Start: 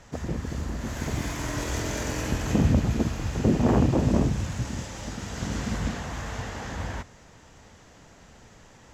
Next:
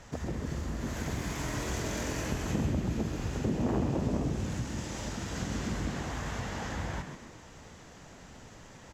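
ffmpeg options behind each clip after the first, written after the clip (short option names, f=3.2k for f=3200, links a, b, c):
-filter_complex "[0:a]acompressor=threshold=-35dB:ratio=2,asplit=5[a][b][c][d][e];[b]adelay=131,afreqshift=86,volume=-7.5dB[f];[c]adelay=262,afreqshift=172,volume=-16.1dB[g];[d]adelay=393,afreqshift=258,volume=-24.8dB[h];[e]adelay=524,afreqshift=344,volume=-33.4dB[i];[a][f][g][h][i]amix=inputs=5:normalize=0"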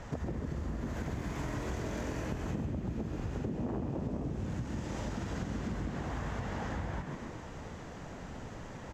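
-af "highshelf=f=2.6k:g=-11.5,acompressor=threshold=-41dB:ratio=5,volume=7dB"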